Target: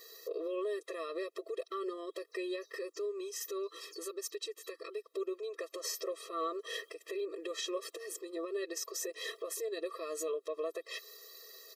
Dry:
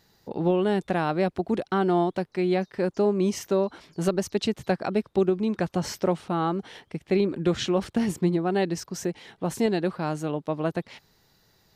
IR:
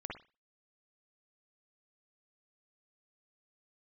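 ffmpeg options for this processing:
-filter_complex "[0:a]highshelf=frequency=8900:gain=12,aecho=1:1:4.3:0.71,acompressor=threshold=-34dB:ratio=12,alimiter=level_in=9.5dB:limit=-24dB:level=0:latency=1:release=98,volume=-9.5dB,asettb=1/sr,asplit=3[link_01][link_02][link_03];[link_01]atrim=end=2.774[link_04];[link_02]atrim=start=2.77:end=5.06,asetpts=PTS-STARTPTS,afade=type=in:duration=0.004:curve=qsin,afade=type=out:start_time=2.286:duration=0.004:curve=qsin,equalizer=frequency=680:width_type=o:width=0.57:gain=-14[link_05];[link_03]atrim=start=5.056[link_06];[link_04][link_05]acrossfade=duration=0.004:curve1=hsin:curve2=qsin[link_07];[link_07][link_06]acrossfade=duration=0.004:curve1=qsin:curve2=hsin,afftfilt=real='re*eq(mod(floor(b*sr/1024/340),2),1)':imag='im*eq(mod(floor(b*sr/1024/340),2),1)':win_size=1024:overlap=0.75,volume=8.5dB"

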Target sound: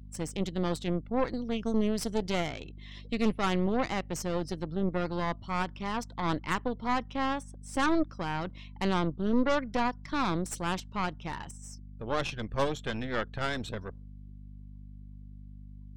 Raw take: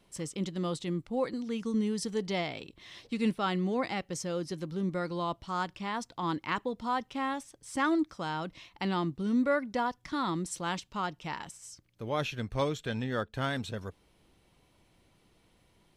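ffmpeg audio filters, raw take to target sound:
ffmpeg -i in.wav -af "afftdn=noise_reduction=22:noise_floor=-55,aeval=exprs='0.158*(cos(1*acos(clip(val(0)/0.158,-1,1)))-cos(1*PI/2))+0.0282*(cos(6*acos(clip(val(0)/0.158,-1,1)))-cos(6*PI/2))':channel_layout=same,aeval=exprs='val(0)+0.00562*(sin(2*PI*50*n/s)+sin(2*PI*2*50*n/s)/2+sin(2*PI*3*50*n/s)/3+sin(2*PI*4*50*n/s)/4+sin(2*PI*5*50*n/s)/5)':channel_layout=same" out.wav

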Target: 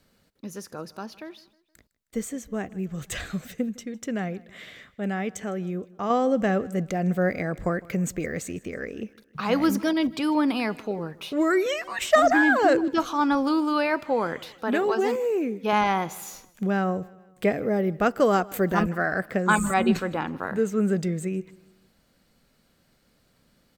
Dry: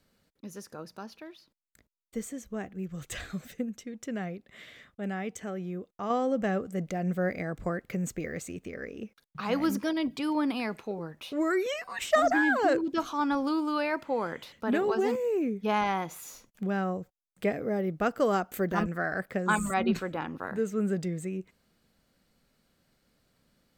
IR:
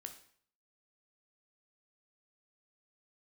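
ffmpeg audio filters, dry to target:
-filter_complex "[0:a]asettb=1/sr,asplit=3[link_01][link_02][link_03];[link_01]atrim=end=14.564[link_04];[link_02]atrim=start=14.56:end=15.73,asetpts=PTS-STARTPTS,afade=type=in:duration=0.004:curve=qsin,afade=type=out:start_time=1.166:duration=0.004:curve=qsin,lowshelf=frequency=190:gain=-11.5[link_05];[link_03]atrim=start=15.726[link_06];[link_04][link_05]acrossfade=duration=0.004:curve1=hsin:curve2=qsin[link_07];[link_07][link_06]acrossfade=duration=0.004:curve1=qsin:curve2=hsin,aecho=1:1:157|314|471:0.075|0.036|0.0173,volume=5.5dB"

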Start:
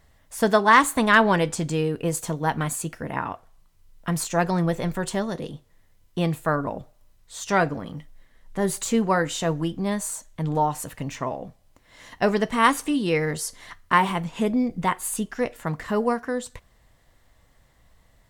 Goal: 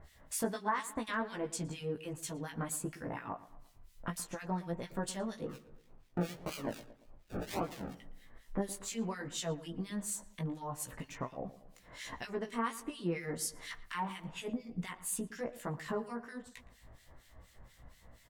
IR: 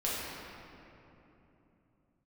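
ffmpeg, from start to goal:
-filter_complex "[0:a]acompressor=threshold=-41dB:ratio=3,asplit=3[link_01][link_02][link_03];[link_01]afade=type=out:start_time=5.46:duration=0.02[link_04];[link_02]acrusher=samples=34:mix=1:aa=0.000001:lfo=1:lforange=20.4:lforate=1.8,afade=type=in:start_time=5.46:duration=0.02,afade=type=out:start_time=7.92:duration=0.02[link_05];[link_03]afade=type=in:start_time=7.92:duration=0.02[link_06];[link_04][link_05][link_06]amix=inputs=3:normalize=0,flanger=delay=15:depth=2.9:speed=1.4,acrossover=split=1700[link_07][link_08];[link_07]aeval=exprs='val(0)*(1-1/2+1/2*cos(2*PI*4.2*n/s))':channel_layout=same[link_09];[link_08]aeval=exprs='val(0)*(1-1/2-1/2*cos(2*PI*4.2*n/s))':channel_layout=same[link_10];[link_09][link_10]amix=inputs=2:normalize=0,asplit=2[link_11][link_12];[link_12]adelay=115,lowpass=frequency=2200:poles=1,volume=-16dB,asplit=2[link_13][link_14];[link_14]adelay=115,lowpass=frequency=2200:poles=1,volume=0.48,asplit=2[link_15][link_16];[link_16]adelay=115,lowpass=frequency=2200:poles=1,volume=0.48,asplit=2[link_17][link_18];[link_18]adelay=115,lowpass=frequency=2200:poles=1,volume=0.48[link_19];[link_11][link_13][link_15][link_17][link_19]amix=inputs=5:normalize=0,volume=8dB"

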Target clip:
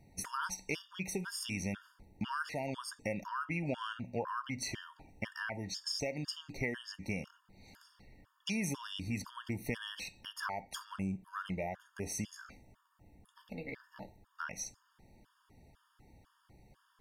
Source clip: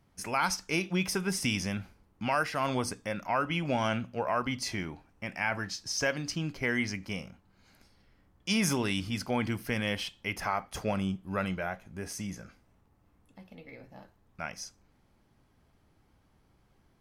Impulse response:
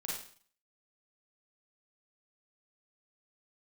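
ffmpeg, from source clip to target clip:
-af "acompressor=threshold=-40dB:ratio=4,afftfilt=real='re*gt(sin(2*PI*2*pts/sr)*(1-2*mod(floor(b*sr/1024/920),2)),0)':imag='im*gt(sin(2*PI*2*pts/sr)*(1-2*mod(floor(b*sr/1024/920),2)),0)':win_size=1024:overlap=0.75,volume=6dB"

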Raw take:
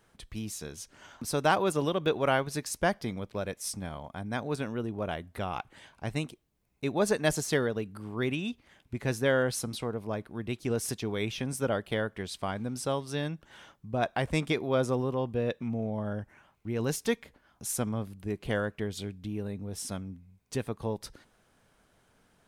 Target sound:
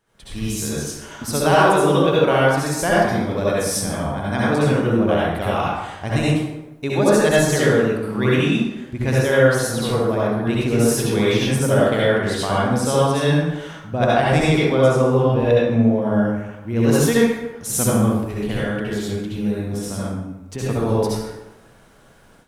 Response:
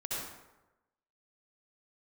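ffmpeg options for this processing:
-filter_complex "[0:a]asettb=1/sr,asplit=3[link_01][link_02][link_03];[link_01]atrim=end=18.164[link_04];[link_02]atrim=start=18.16:end=20.61,asetpts=PTS-STARTPTS,afade=type=in:duration=0.004:curve=qsin,afade=type=out:start_time=2.446:duration=0.004:curve=qsin,acrossover=split=290|2100[link_05][link_06][link_07];[link_05]acompressor=threshold=-38dB:ratio=4[link_08];[link_06]acompressor=threshold=-41dB:ratio=4[link_09];[link_07]acompressor=threshold=-47dB:ratio=4[link_10];[link_08][link_09][link_10]amix=inputs=3:normalize=0[link_11];[link_03]atrim=start=20.606[link_12];[link_04][link_11]acrossfade=duration=0.004:curve1=hsin:curve2=qsin[link_13];[link_13][link_12]acrossfade=duration=0.004:curve1=qsin:curve2=hsin[link_14];[1:a]atrim=start_sample=2205[link_15];[link_14][link_15]afir=irnorm=-1:irlink=0,dynaudnorm=framelen=160:gausssize=3:maxgain=13dB,volume=-1.5dB"

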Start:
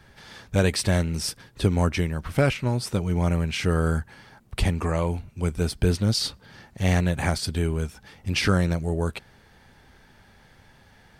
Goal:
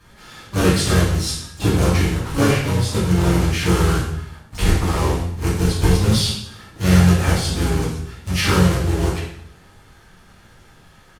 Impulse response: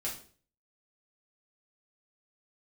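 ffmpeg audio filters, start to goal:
-filter_complex "[0:a]asplit=3[link_01][link_02][link_03];[link_02]asetrate=33038,aresample=44100,atempo=1.33484,volume=-3dB[link_04];[link_03]asetrate=88200,aresample=44100,atempo=0.5,volume=-11dB[link_05];[link_01][link_04][link_05]amix=inputs=3:normalize=0,acrusher=bits=2:mode=log:mix=0:aa=0.000001[link_06];[1:a]atrim=start_sample=2205,asetrate=26460,aresample=44100[link_07];[link_06][link_07]afir=irnorm=-1:irlink=0,volume=-3dB"

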